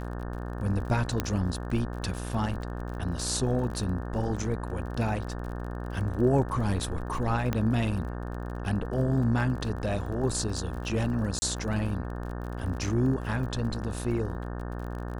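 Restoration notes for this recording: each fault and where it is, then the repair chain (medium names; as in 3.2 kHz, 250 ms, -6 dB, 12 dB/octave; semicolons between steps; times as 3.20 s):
buzz 60 Hz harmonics 30 -35 dBFS
crackle 35 per s -37 dBFS
1.20 s: pop -12 dBFS
7.53 s: pop -15 dBFS
11.39–11.42 s: dropout 30 ms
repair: de-click; de-hum 60 Hz, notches 30; interpolate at 11.39 s, 30 ms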